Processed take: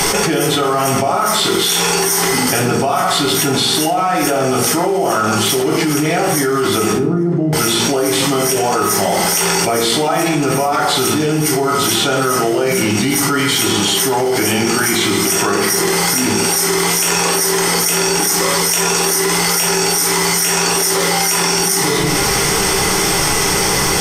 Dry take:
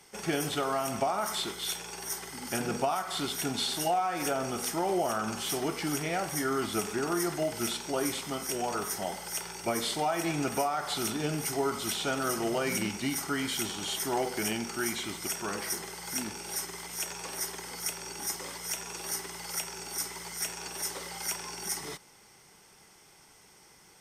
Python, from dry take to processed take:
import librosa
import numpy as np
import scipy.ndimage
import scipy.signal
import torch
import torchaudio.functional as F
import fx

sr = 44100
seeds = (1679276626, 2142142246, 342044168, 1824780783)

y = fx.bandpass_q(x, sr, hz=170.0, q=2.0, at=(6.92, 7.53))
y = fx.room_shoebox(y, sr, seeds[0], volume_m3=47.0, walls='mixed', distance_m=0.66)
y = fx.env_flatten(y, sr, amount_pct=100)
y = F.gain(torch.from_numpy(y), 4.5).numpy()